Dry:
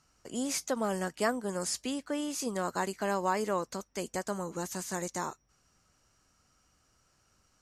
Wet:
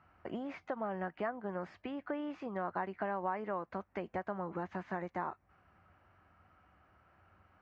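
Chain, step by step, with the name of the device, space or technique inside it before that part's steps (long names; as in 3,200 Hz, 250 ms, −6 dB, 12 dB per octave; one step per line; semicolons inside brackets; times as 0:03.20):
bass amplifier (downward compressor 5 to 1, threshold −41 dBFS, peak gain reduction 16 dB; loudspeaker in its box 80–2,200 Hz, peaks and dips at 89 Hz +8 dB, 130 Hz −9 dB, 250 Hz −6 dB, 460 Hz −6 dB, 740 Hz +4 dB)
level +7 dB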